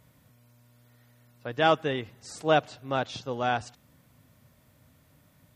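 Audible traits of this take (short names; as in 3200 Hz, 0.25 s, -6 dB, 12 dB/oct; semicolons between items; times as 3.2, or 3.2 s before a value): noise floor -63 dBFS; spectral tilt -3.0 dB/oct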